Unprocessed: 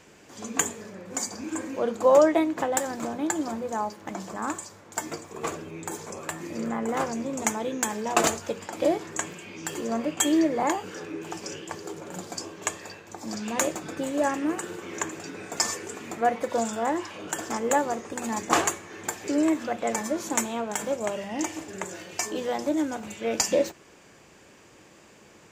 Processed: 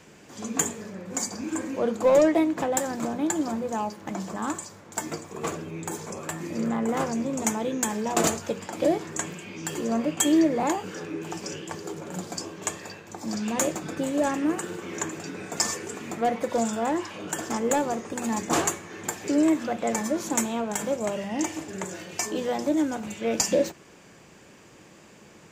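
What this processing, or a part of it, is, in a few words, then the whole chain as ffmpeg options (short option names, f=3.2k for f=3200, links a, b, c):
one-band saturation: -filter_complex "[0:a]equalizer=f=170:w=1.4:g=5,acrossover=split=580|4700[a][b][c];[b]asoftclip=type=tanh:threshold=-25.5dB[d];[a][d][c]amix=inputs=3:normalize=0,volume=1dB"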